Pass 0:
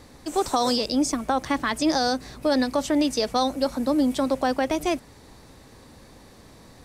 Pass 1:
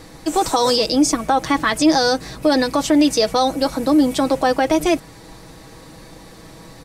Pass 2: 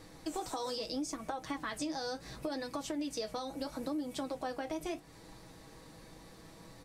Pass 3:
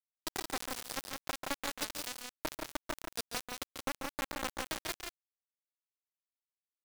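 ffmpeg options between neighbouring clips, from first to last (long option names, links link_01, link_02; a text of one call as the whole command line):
ffmpeg -i in.wav -filter_complex "[0:a]aecho=1:1:6.2:0.56,asplit=2[link_01][link_02];[link_02]alimiter=limit=-16dB:level=0:latency=1:release=27,volume=2.5dB[link_03];[link_01][link_03]amix=inputs=2:normalize=0" out.wav
ffmpeg -i in.wav -af "acompressor=threshold=-22dB:ratio=6,flanger=delay=9.4:depth=9.4:regen=-57:speed=0.74:shape=sinusoidal,volume=-9dB" out.wav
ffmpeg -i in.wav -filter_complex "[0:a]acrusher=bits=4:mix=0:aa=0.000001,asplit=2[link_01][link_02];[link_02]aecho=0:1:139.9|172:0.398|0.562[link_03];[link_01][link_03]amix=inputs=2:normalize=0,volume=1dB" out.wav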